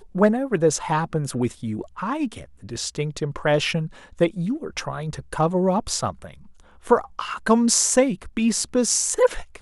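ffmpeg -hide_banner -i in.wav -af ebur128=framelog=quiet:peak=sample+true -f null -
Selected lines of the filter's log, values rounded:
Integrated loudness:
  I:         -22.6 LUFS
  Threshold: -32.9 LUFS
Loudness range:
  LRA:         5.2 LU
  Threshold: -43.8 LUFS
  LRA low:   -25.9 LUFS
  LRA high:  -20.8 LUFS
Sample peak:
  Peak:       -2.4 dBFS
True peak:
  Peak:       -2.4 dBFS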